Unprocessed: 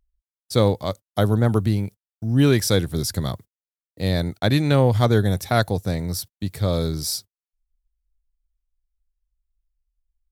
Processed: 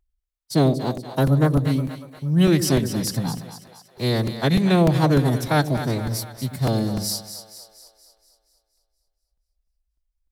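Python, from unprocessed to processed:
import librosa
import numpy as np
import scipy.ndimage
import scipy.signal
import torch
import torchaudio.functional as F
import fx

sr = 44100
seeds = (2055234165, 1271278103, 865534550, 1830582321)

y = fx.pitch_keep_formants(x, sr, semitones=4.5)
y = fx.echo_split(y, sr, split_hz=510.0, low_ms=95, high_ms=237, feedback_pct=52, wet_db=-10)
y = fx.buffer_crackle(y, sr, first_s=0.97, period_s=0.3, block=128, kind='repeat')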